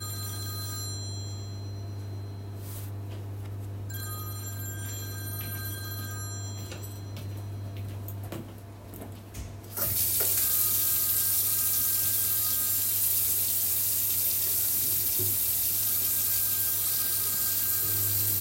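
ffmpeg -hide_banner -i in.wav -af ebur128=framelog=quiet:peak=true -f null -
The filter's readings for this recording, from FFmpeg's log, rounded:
Integrated loudness:
  I:         -25.0 LUFS
  Threshold: -36.6 LUFS
Loudness range:
  LRA:        14.5 LU
  Threshold: -46.6 LUFS
  LRA low:   -37.6 LUFS
  LRA high:  -23.1 LUFS
True peak:
  Peak:       -9.5 dBFS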